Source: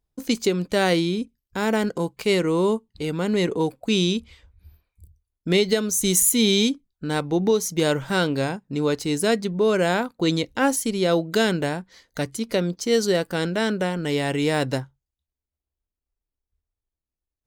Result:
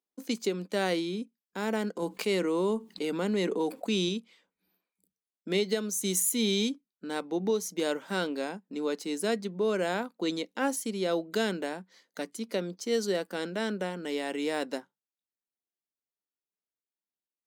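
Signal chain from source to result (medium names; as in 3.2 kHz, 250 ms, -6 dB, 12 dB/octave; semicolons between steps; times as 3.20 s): elliptic high-pass 190 Hz, stop band 40 dB; 2.02–4.09 s: level flattener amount 50%; trim -8 dB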